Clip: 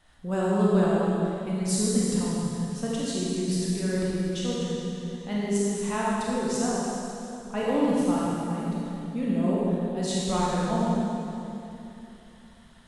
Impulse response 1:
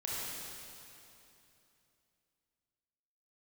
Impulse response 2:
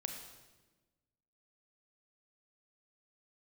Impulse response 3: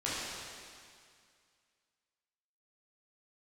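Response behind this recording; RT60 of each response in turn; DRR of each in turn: 1; 2.9, 1.2, 2.1 s; -6.5, 3.5, -9.5 dB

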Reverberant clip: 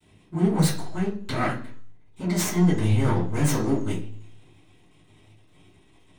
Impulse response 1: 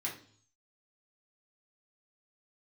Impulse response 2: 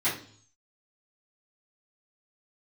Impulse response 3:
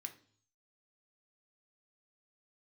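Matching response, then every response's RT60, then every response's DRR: 2; 0.50, 0.50, 0.50 s; -4.5, -14.0, 5.0 dB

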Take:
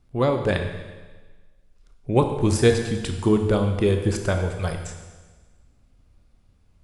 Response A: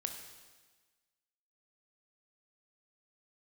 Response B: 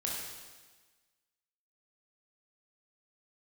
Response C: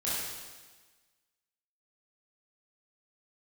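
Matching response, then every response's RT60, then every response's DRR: A; 1.4, 1.4, 1.4 s; 4.5, -3.5, -9.5 dB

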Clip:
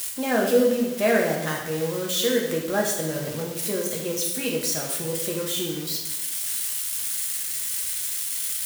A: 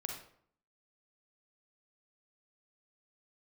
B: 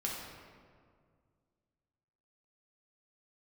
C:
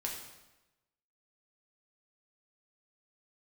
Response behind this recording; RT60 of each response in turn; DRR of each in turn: C; 0.60, 2.0, 1.0 s; 1.5, -4.0, -2.0 dB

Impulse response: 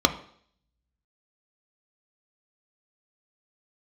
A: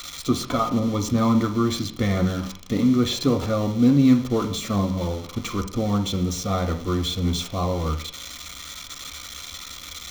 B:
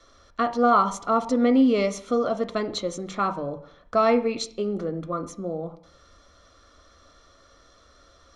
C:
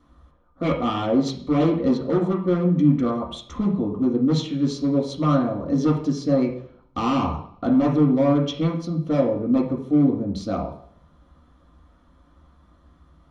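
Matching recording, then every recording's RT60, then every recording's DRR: B; 0.60, 0.60, 0.60 s; 3.0, 7.0, -3.0 dB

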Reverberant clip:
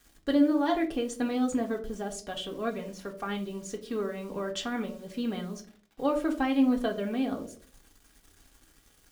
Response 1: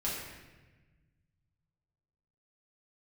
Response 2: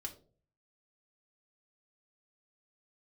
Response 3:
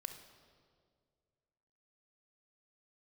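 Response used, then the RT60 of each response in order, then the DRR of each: 2; 1.2, 0.45, 2.0 s; -8.0, 1.0, 6.5 dB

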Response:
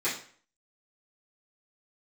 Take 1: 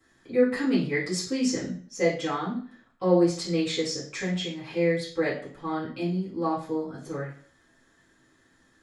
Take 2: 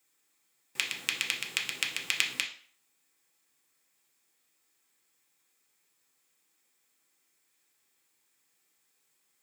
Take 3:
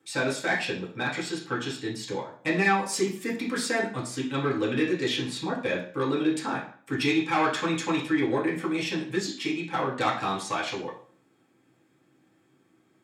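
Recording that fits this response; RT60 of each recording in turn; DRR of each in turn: 1; 0.50, 0.50, 0.50 s; -13.0, -1.0, -5.5 dB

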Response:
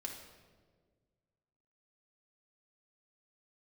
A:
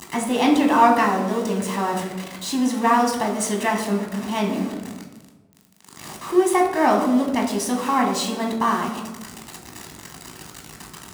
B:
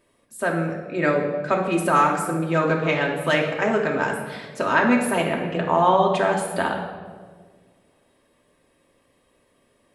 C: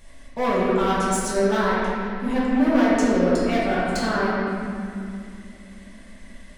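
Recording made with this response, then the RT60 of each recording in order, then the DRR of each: B; 1.2, 1.6, 2.5 s; 0.0, -0.5, -9.5 dB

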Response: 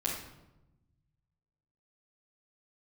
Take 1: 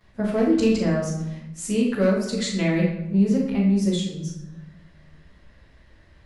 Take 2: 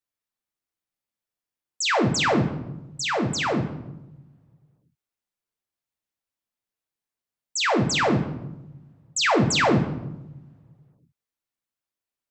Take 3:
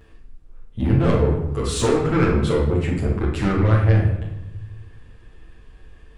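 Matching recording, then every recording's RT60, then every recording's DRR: 3; 0.95, 1.0, 0.95 s; -12.5, 3.0, -6.0 dB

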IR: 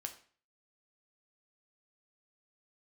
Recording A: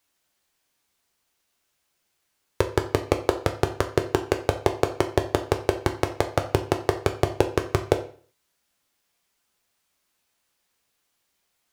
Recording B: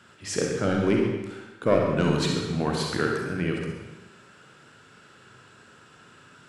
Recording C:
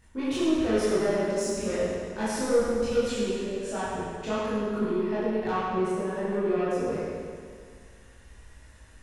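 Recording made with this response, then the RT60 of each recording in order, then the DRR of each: A; 0.45, 1.1, 2.0 s; 4.5, -0.5, -11.0 dB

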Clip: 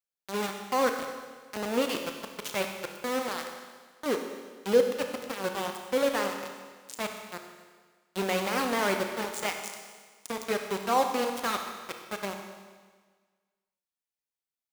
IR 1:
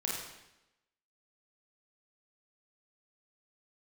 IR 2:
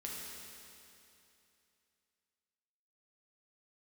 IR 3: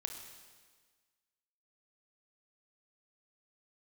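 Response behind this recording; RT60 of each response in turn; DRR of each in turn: 3; 0.90, 2.8, 1.5 s; -4.0, -4.0, 4.0 dB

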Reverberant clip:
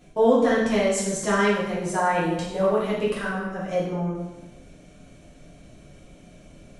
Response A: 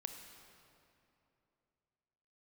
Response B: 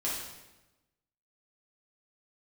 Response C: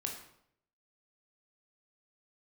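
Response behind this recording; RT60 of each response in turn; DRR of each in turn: B; 2.9, 1.0, 0.70 s; 5.5, -7.5, 0.5 dB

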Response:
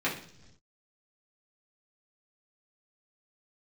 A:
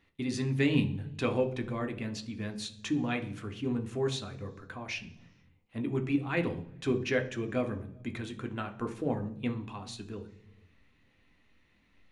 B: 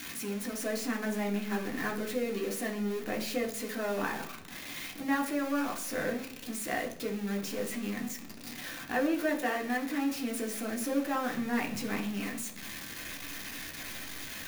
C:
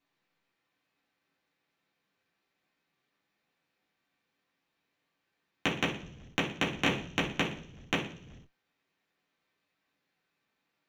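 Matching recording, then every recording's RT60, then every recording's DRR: C; not exponential, not exponential, not exponential; 5.0, 0.5, -7.0 dB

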